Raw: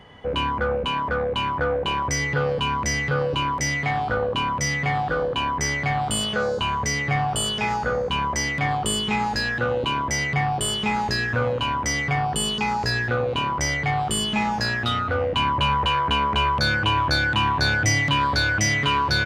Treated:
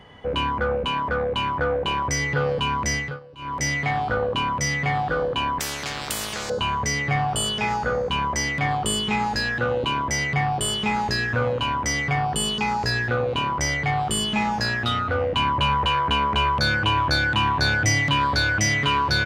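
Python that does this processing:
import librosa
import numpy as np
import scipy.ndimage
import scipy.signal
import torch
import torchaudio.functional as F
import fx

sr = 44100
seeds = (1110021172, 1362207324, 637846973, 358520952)

y = fx.spectral_comp(x, sr, ratio=4.0, at=(5.59, 6.5))
y = fx.edit(y, sr, fx.fade_down_up(start_s=2.94, length_s=0.69, db=-21.5, fade_s=0.26), tone=tone)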